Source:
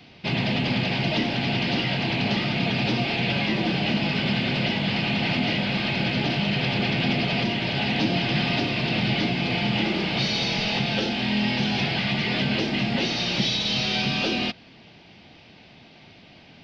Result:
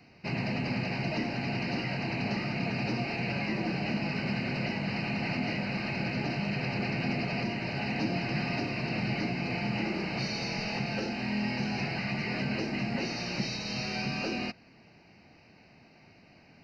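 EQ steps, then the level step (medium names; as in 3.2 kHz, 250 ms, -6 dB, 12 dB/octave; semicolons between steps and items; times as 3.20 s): Butterworth band-stop 3.4 kHz, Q 2.3; -7.0 dB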